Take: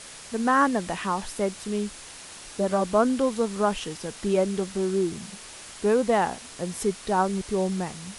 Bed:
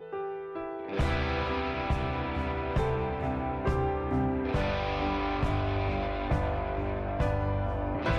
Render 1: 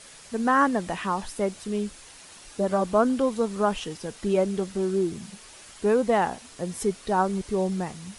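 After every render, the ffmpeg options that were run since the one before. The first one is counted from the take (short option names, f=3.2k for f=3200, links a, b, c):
-af "afftdn=nr=6:nf=-43"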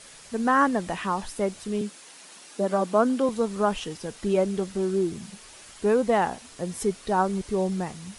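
-filter_complex "[0:a]asettb=1/sr,asplit=3[a][b][c];[a]atrim=end=1.814[d];[b]atrim=start=1.81:end=3.29,asetpts=PTS-STARTPTS,afade=t=in:d=0.004:c=qsin,afade=t=out:st=1.476:d=0.004:c=qsin,highpass=f=170:w=0.5412,highpass=f=170:w=1.3066[e];[c]atrim=start=3.286[f];[d][e]acrossfade=d=0.004:c1=hsin:c2=qsin[g];[g][f]acrossfade=d=0.004:c1=qsin:c2=hsin"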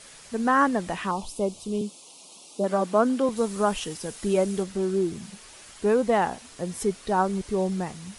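-filter_complex "[0:a]asettb=1/sr,asplit=3[a][b][c];[a]atrim=end=1.114[d];[b]atrim=start=1.11:end=2.64,asetpts=PTS-STARTPTS,afade=t=in:d=0.004:c=qsin,afade=t=out:st=1.526:d=0.004:c=qsin,asuperstop=centerf=1700:order=4:qfactor=1[e];[c]atrim=start=2.636[f];[d][e]acrossfade=d=0.004:c1=hsin:c2=qsin[g];[g][f]acrossfade=d=0.004:c1=qsin:c2=hsin,asettb=1/sr,asplit=3[h][i][j];[h]atrim=end=3.374[k];[i]atrim=start=3.37:end=4.63,asetpts=PTS-STARTPTS,afade=t=in:d=0.004:c=qsin,afade=t=out:st=1.256:d=0.004:c=qsin,highshelf=f=7.7k:g=11.5[l];[j]atrim=start=4.626[m];[k][l]acrossfade=d=0.004:c1=hsin:c2=qsin[n];[n][m]acrossfade=d=0.004:c1=qsin:c2=hsin"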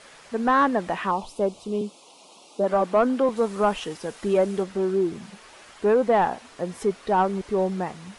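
-filter_complex "[0:a]asplit=2[a][b];[b]highpass=f=720:p=1,volume=14dB,asoftclip=type=tanh:threshold=-7.5dB[c];[a][c]amix=inputs=2:normalize=0,lowpass=f=1.1k:p=1,volume=-6dB"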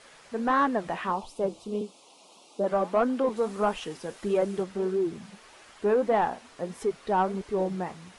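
-af "flanger=delay=2.4:depth=8.5:regen=-72:speed=1.6:shape=sinusoidal"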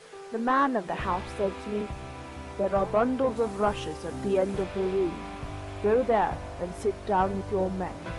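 -filter_complex "[1:a]volume=-9dB[a];[0:a][a]amix=inputs=2:normalize=0"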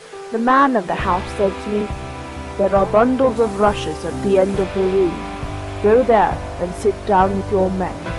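-af "volume=10.5dB"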